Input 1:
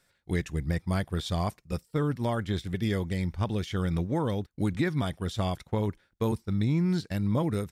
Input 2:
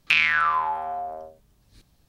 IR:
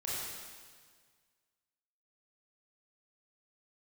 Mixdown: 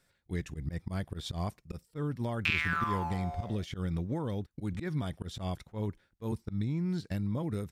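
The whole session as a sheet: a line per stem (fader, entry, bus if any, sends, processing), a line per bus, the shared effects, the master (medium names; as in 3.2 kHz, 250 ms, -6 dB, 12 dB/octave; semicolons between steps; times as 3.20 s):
-3.5 dB, 0.00 s, no send, slow attack 124 ms; compression 5:1, threshold -29 dBFS, peak gain reduction 7.5 dB
-10.5 dB, 2.35 s, no send, crossover distortion -44.5 dBFS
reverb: none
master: bass shelf 410 Hz +4 dB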